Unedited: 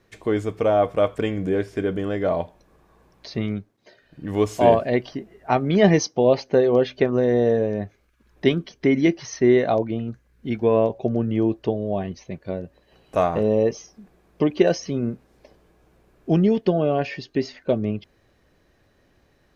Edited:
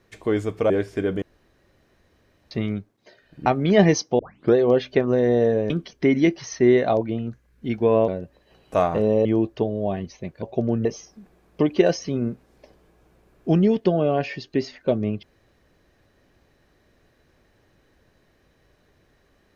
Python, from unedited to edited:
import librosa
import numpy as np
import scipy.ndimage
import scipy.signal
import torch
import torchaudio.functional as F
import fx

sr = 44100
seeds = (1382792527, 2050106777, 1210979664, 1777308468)

y = fx.edit(x, sr, fx.cut(start_s=0.7, length_s=0.8),
    fx.room_tone_fill(start_s=2.02, length_s=1.29),
    fx.cut(start_s=4.26, length_s=1.25),
    fx.tape_start(start_s=6.24, length_s=0.36),
    fx.cut(start_s=7.75, length_s=0.76),
    fx.swap(start_s=10.89, length_s=0.43, other_s=12.49, other_length_s=1.17), tone=tone)